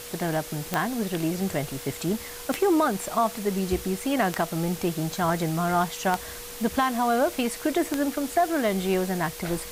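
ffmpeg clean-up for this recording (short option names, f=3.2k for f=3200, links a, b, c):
-af "adeclick=t=4,bandreject=f=480:w=30,afwtdn=0.011"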